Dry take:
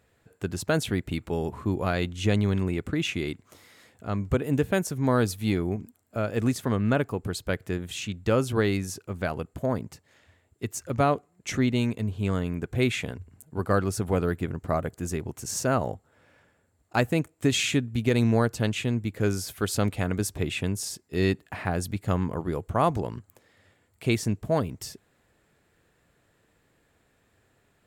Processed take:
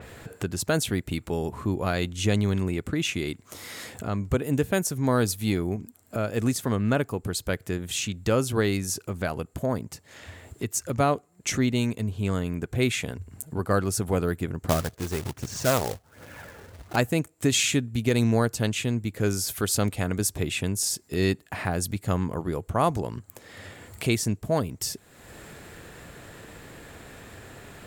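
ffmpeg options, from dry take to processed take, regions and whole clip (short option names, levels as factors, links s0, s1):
-filter_complex "[0:a]asettb=1/sr,asplit=3[s0][s1][s2];[s0]atrim=end=14.694[s3];[s1]atrim=start=14.69:end=16.96,asetpts=PTS-STARTPTS,afade=t=in:d=0.004:c=qsin,afade=t=out:st=2.266:d=0.004:c=qsin,lowpass=3000,aphaser=in_gain=1:out_gain=1:delay=2.6:decay=0.42:speed=1.3:type=triangular,acrusher=bits=2:mode=log:mix=0:aa=0.000001[s4];[s2]atrim=start=16.956[s5];[s3][s4]acrossfade=d=0.004:c1=hsin:c2=qsin[s6];[s6][s5]acrossfade=d=0.004:c1=qsin:c2=hsin,acompressor=mode=upward:threshold=0.0501:ratio=2.5,adynamicequalizer=threshold=0.00501:dfrequency=4400:dqfactor=0.7:tfrequency=4400:tqfactor=0.7:attack=5:release=100:ratio=0.375:range=3.5:mode=boostabove:tftype=highshelf"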